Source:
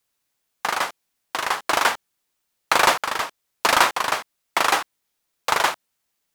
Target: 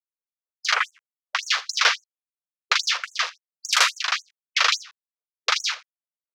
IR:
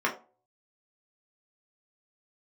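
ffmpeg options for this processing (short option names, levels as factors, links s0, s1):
-filter_complex "[0:a]asettb=1/sr,asplit=3[s0][s1][s2];[s0]atrim=end=0.744[s3];[s1]atrim=start=0.74:end=1.43,asetpts=PTS-STARTPTS,afade=t=in:d=0.004:c=qsin,afade=t=out:st=0.686:d=0.004:c=qsin,acrossover=split=2800[s4][s5];[s5]acompressor=threshold=0.00562:ratio=4:attack=1:release=60[s6];[s4][s6]amix=inputs=2:normalize=0[s7];[s2]atrim=start=1.426[s8];[s3][s7]acrossfade=d=0.004:c1=hsin:c2=qsin[s9];[s9][s8]acrossfade=d=0.004:c1=qsin:c2=hsin,acrossover=split=240|950[s10][s11][s12];[s12]acrusher=bits=5:mix=0:aa=0.000001[s13];[s10][s11][s13]amix=inputs=3:normalize=0,firequalizer=gain_entry='entry(120,0);entry(250,8);entry(550,-2);entry(850,-9);entry(1200,2);entry(2400,7);entry(6100,12);entry(9800,-4);entry(15000,-18)':delay=0.05:min_phase=1,dynaudnorm=f=210:g=3:m=2.66,asoftclip=type=tanh:threshold=0.422,afwtdn=0.0447,aecho=1:1:84:0.1,afftfilt=real='re*gte(b*sr/1024,410*pow(6300/410,0.5+0.5*sin(2*PI*3.6*pts/sr)))':imag='im*gte(b*sr/1024,410*pow(6300/410,0.5+0.5*sin(2*PI*3.6*pts/sr)))':win_size=1024:overlap=0.75"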